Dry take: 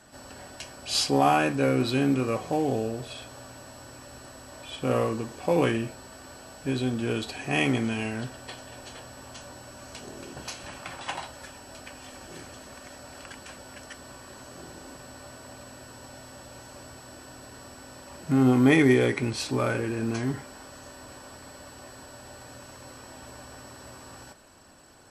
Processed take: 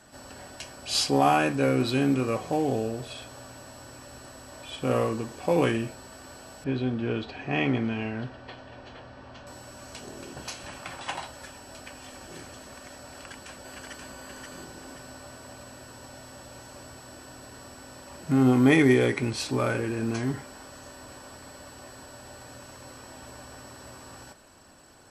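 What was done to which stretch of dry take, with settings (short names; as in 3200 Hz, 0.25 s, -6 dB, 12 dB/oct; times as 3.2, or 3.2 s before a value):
6.64–9.47 air absorption 230 m
13.11–14.11 echo throw 0.53 s, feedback 40%, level -3 dB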